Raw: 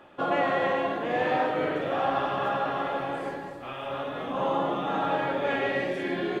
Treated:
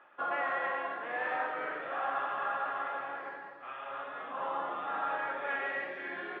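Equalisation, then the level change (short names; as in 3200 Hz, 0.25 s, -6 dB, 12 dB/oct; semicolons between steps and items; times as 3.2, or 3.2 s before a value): band-pass 1500 Hz, Q 1.6; air absorption 170 m; 0.0 dB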